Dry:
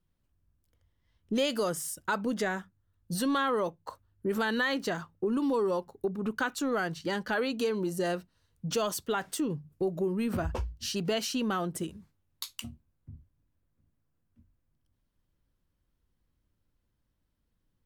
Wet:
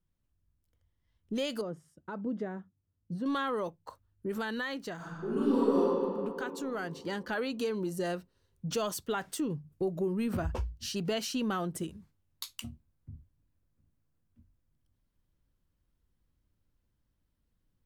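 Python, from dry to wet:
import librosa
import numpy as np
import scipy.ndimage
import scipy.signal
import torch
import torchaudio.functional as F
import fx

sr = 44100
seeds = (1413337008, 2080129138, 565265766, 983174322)

y = fx.bandpass_q(x, sr, hz=240.0, q=0.6, at=(1.61, 3.26))
y = fx.reverb_throw(y, sr, start_s=4.96, length_s=0.87, rt60_s=2.5, drr_db=-10.5)
y = fx.low_shelf(y, sr, hz=220.0, db=3.0)
y = fx.rider(y, sr, range_db=10, speed_s=2.0)
y = y * librosa.db_to_amplitude(-7.5)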